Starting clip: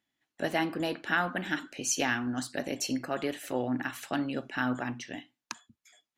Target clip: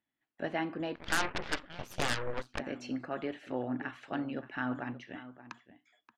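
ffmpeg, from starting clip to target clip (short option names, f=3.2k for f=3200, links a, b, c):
-filter_complex "[0:a]lowpass=2.6k,asplit=2[a][b];[b]adelay=577.3,volume=-14dB,highshelf=f=4k:g=-13[c];[a][c]amix=inputs=2:normalize=0,asplit=3[d][e][f];[d]afade=t=out:st=0.95:d=0.02[g];[e]aeval=exprs='0.168*(cos(1*acos(clip(val(0)/0.168,-1,1)))-cos(1*PI/2))+0.0335*(cos(7*acos(clip(val(0)/0.168,-1,1)))-cos(7*PI/2))+0.0473*(cos(8*acos(clip(val(0)/0.168,-1,1)))-cos(8*PI/2))':c=same,afade=t=in:st=0.95:d=0.02,afade=t=out:st=2.58:d=0.02[h];[f]afade=t=in:st=2.58:d=0.02[i];[g][h][i]amix=inputs=3:normalize=0,volume=-4.5dB"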